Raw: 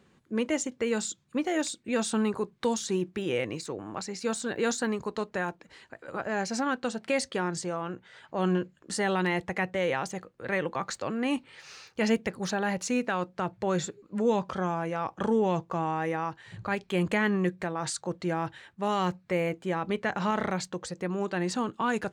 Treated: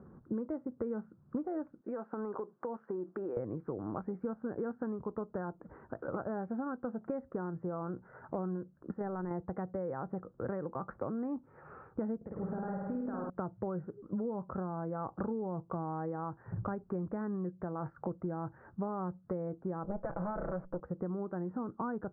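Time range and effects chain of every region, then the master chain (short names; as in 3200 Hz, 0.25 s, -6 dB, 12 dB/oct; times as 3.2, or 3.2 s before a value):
1.81–3.37 HPF 420 Hz + compressor 5:1, threshold -39 dBFS
8.91–9.31 gate -26 dBFS, range -20 dB + fast leveller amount 50%
12.16–13.3 compressor, threshold -34 dBFS + flutter echo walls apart 8.9 m, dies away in 1.1 s
19.84–20.8 minimum comb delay 6 ms + bell 560 Hz +13.5 dB 0.26 oct
whole clip: elliptic low-pass 1400 Hz, stop band 60 dB; low shelf 420 Hz +8.5 dB; compressor 10:1, threshold -37 dBFS; gain +3 dB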